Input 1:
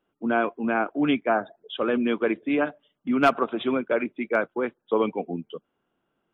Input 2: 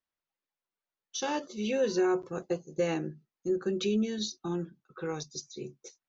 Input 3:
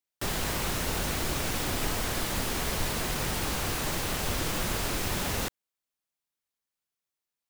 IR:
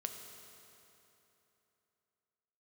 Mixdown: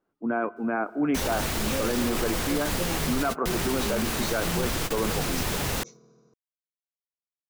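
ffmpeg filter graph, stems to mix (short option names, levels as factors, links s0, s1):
-filter_complex "[0:a]lowpass=f=2000:w=0.5412,lowpass=f=2000:w=1.3066,volume=0.668,asplit=2[s0][s1];[s1]volume=0.251[s2];[1:a]bandreject=f=99.14:t=h:w=4,bandreject=f=198.28:t=h:w=4,bandreject=f=297.42:t=h:w=4,bandreject=f=396.56:t=h:w=4,bandreject=f=495.7:t=h:w=4,bandreject=f=594.84:t=h:w=4,bandreject=f=693.98:t=h:w=4,bandreject=f=793.12:t=h:w=4,bandreject=f=892.26:t=h:w=4,bandreject=f=991.4:t=h:w=4,bandreject=f=1090.54:t=h:w=4,bandreject=f=1189.68:t=h:w=4,bandreject=f=1288.82:t=h:w=4,bandreject=f=1387.96:t=h:w=4,bandreject=f=1487.1:t=h:w=4,bandreject=f=1586.24:t=h:w=4,bandreject=f=1685.38:t=h:w=4,bandreject=f=1784.52:t=h:w=4,bandreject=f=1883.66:t=h:w=4,bandreject=f=1982.8:t=h:w=4,bandreject=f=2081.94:t=h:w=4,bandreject=f=2181.08:t=h:w=4,bandreject=f=2280.22:t=h:w=4,bandreject=f=2379.36:t=h:w=4,bandreject=f=2478.5:t=h:w=4,bandreject=f=2577.64:t=h:w=4,bandreject=f=2676.78:t=h:w=4,asubboost=boost=5.5:cutoff=160,flanger=delay=20:depth=3.2:speed=0.94,volume=0.841,asplit=3[s3][s4][s5];[s4]volume=0.398[s6];[2:a]adelay=350,volume=1.26[s7];[s5]apad=whole_len=345899[s8];[s7][s8]sidechaingate=range=0.00562:threshold=0.00112:ratio=16:detection=peak[s9];[3:a]atrim=start_sample=2205[s10];[s2][s6]amix=inputs=2:normalize=0[s11];[s11][s10]afir=irnorm=-1:irlink=0[s12];[s0][s3][s9][s12]amix=inputs=4:normalize=0,alimiter=limit=0.141:level=0:latency=1:release=12"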